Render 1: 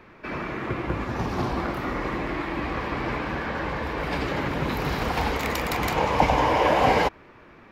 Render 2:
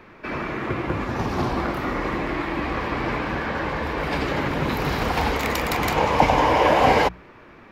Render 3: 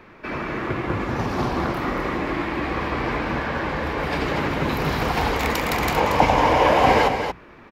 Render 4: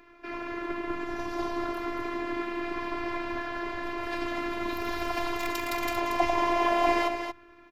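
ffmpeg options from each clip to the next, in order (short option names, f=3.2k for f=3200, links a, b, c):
-af "bandreject=f=60:t=h:w=6,bandreject=f=120:t=h:w=6,bandreject=f=180:t=h:w=6,volume=3dB"
-af "aecho=1:1:231:0.447"
-af "afftfilt=real='hypot(re,im)*cos(PI*b)':imag='0':win_size=512:overlap=0.75,volume=-4.5dB"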